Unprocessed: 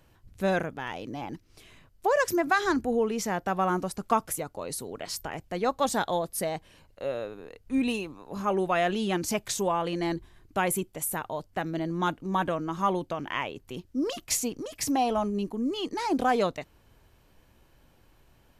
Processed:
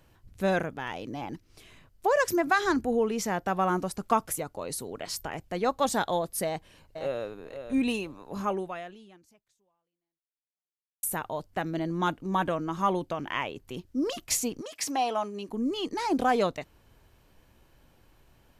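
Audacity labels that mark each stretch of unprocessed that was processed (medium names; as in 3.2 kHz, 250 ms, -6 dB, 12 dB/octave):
6.450000	7.230000	echo throw 500 ms, feedback 10%, level -9 dB
8.440000	11.030000	fade out exponential
14.610000	15.490000	frequency weighting A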